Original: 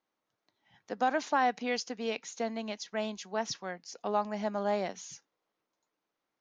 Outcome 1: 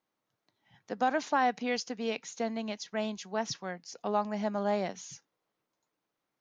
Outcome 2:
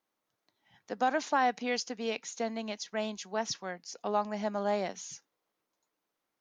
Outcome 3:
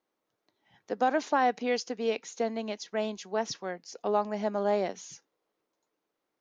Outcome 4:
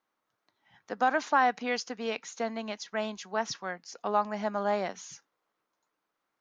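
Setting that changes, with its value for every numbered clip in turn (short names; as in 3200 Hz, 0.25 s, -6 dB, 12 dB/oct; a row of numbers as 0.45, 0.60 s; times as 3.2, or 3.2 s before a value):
bell, frequency: 130, 15000, 410, 1300 Hz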